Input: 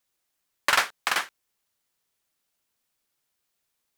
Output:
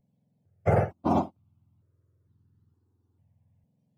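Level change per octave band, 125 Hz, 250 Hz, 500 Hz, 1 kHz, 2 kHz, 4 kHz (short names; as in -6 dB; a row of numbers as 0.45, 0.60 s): n/a, +20.5 dB, +11.5 dB, -1.0 dB, -17.0 dB, -27.0 dB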